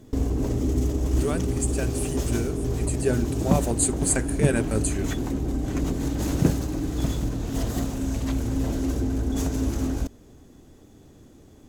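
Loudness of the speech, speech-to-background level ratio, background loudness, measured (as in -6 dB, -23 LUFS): -28.0 LUFS, -1.0 dB, -27.0 LUFS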